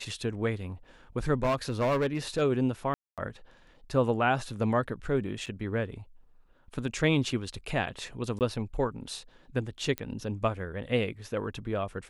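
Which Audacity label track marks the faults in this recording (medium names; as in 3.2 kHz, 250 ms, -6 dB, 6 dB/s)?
1.340000	2.420000	clipped -22.5 dBFS
2.940000	3.180000	dropout 237 ms
5.460000	5.470000	dropout 6.5 ms
8.390000	8.410000	dropout 18 ms
9.980000	9.980000	pop -17 dBFS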